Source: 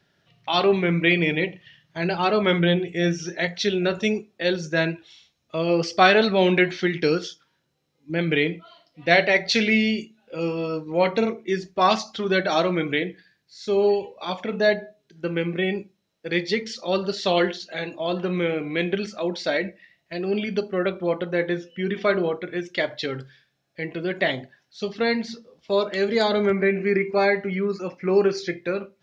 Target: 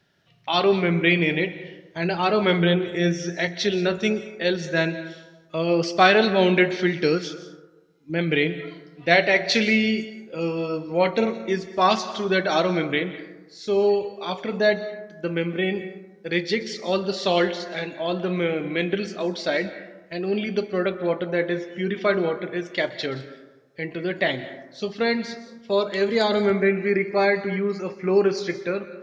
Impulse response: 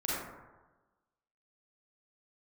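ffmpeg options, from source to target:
-filter_complex "[0:a]asplit=2[link_01][link_02];[1:a]atrim=start_sample=2205,highshelf=frequency=6100:gain=11.5,adelay=126[link_03];[link_02][link_03]afir=irnorm=-1:irlink=0,volume=-20.5dB[link_04];[link_01][link_04]amix=inputs=2:normalize=0"

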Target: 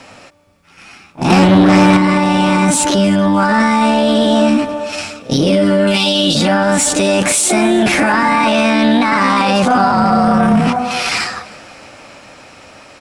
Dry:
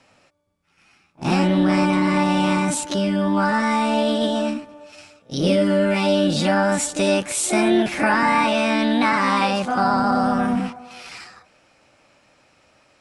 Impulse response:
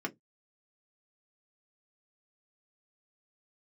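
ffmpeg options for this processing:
-filter_complex "[0:a]asettb=1/sr,asplit=3[link_01][link_02][link_03];[link_01]atrim=end=5.874[link_04];[link_02]atrim=start=5.87:end=6.35,asetpts=PTS-STARTPTS,afade=type=in:duration=0.004:curve=qsin,afade=type=out:start_time=0.476:duration=0.004:curve=qsin,highshelf=frequency=2500:width_type=q:width=3:gain=8[link_05];[link_03]atrim=start=6.346[link_06];[link_04][link_05]acrossfade=duration=0.004:curve1=hsin:curve2=qsin[link_07];[link_07][link_06]acrossfade=duration=0.004:curve1=qsin:curve2=hsin,dynaudnorm=framelen=590:gausssize=9:maxgain=11.5dB,alimiter=limit=-22dB:level=0:latency=1:release=38,asettb=1/sr,asplit=3[link_08][link_09][link_10];[link_08]atrim=end=1.304[link_11];[link_09]atrim=start=1.3:end=1.97,asetpts=PTS-STARTPTS,afade=type=in:duration=0.004:curve=qsin,afade=type=out:start_time=0.666:duration=0.004:curve=qsin,acontrast=46[link_12];[link_10]atrim=start=1.966[link_13];[link_11][link_12]acrossfade=duration=0.004:curve1=hsin:curve2=qsin[link_14];[link_14][link_13]acrossfade=duration=0.004:curve1=qsin:curve2=hsin,asettb=1/sr,asplit=3[link_15][link_16][link_17];[link_15]atrim=end=9.924[link_18];[link_16]atrim=start=9.92:end=10.67,asetpts=PTS-STARTPTS,afade=type=in:duration=0.004:curve=qsin,afade=type=out:start_time=0.746:duration=0.004:curve=qsin,afreqshift=-30[link_19];[link_17]atrim=start=10.666[link_20];[link_18][link_19]acrossfade=duration=0.004:curve1=hsin:curve2=qsin[link_21];[link_21][link_20]acrossfade=duration=0.004:curve1=qsin:curve2=hsin,aeval=exprs='0.473*sin(PI/2*3.98*val(0)/0.473)':channel_layout=same,aecho=1:1:314|628|942:0.0708|0.0304|0.0131,asplit=2[link_22][link_23];[1:a]atrim=start_sample=2205,asetrate=27342,aresample=44100[link_24];[link_23][link_24]afir=irnorm=-1:irlink=0,volume=-23.5dB[link_25];[link_22][link_25]amix=inputs=2:normalize=0,volume=1.5dB"

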